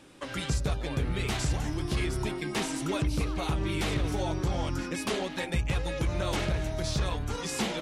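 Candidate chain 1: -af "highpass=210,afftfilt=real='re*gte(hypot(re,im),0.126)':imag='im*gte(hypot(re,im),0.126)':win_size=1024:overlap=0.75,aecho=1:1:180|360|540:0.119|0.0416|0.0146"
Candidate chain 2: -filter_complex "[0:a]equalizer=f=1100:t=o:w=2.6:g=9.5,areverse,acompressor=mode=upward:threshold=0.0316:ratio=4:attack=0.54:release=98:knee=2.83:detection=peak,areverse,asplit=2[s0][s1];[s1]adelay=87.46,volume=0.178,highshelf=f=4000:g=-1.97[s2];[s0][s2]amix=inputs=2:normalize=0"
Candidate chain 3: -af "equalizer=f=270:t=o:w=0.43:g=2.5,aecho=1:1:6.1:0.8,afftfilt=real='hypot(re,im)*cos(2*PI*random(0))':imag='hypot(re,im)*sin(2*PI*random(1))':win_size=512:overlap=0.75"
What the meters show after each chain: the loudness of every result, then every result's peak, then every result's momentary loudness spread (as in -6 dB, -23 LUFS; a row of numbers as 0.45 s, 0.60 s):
-40.5 LUFS, -27.5 LUFS, -35.0 LUFS; -22.5 dBFS, -12.0 dBFS, -17.5 dBFS; 9 LU, 3 LU, 3 LU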